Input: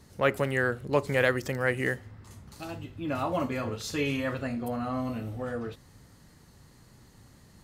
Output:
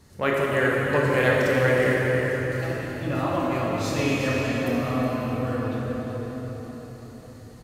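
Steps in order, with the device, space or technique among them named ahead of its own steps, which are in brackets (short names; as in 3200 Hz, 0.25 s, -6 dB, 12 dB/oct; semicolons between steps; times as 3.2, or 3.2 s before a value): cave (echo 0.366 s -9 dB; reverb RT60 5.0 s, pre-delay 15 ms, DRR -4 dB)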